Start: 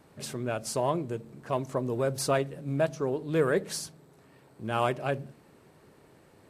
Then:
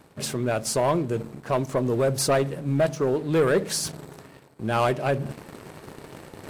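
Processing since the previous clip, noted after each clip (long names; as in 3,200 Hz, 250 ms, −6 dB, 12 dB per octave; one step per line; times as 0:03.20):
leveller curve on the samples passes 2
reversed playback
upward compression, threshold −25 dBFS
reversed playback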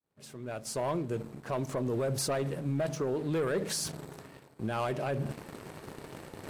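fade in at the beginning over 1.75 s
brickwall limiter −21.5 dBFS, peak gain reduction 8.5 dB
level −3 dB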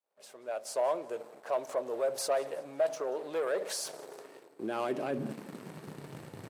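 high-pass filter sweep 590 Hz → 120 Hz, 0:03.77–0:06.29
repeating echo 183 ms, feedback 41%, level −22 dB
level −3 dB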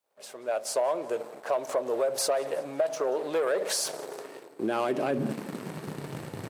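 downward compressor, threshold −31 dBFS, peak gain reduction 7.5 dB
level +8 dB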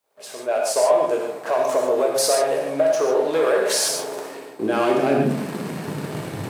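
convolution reverb, pre-delay 3 ms, DRR −1 dB
level +5.5 dB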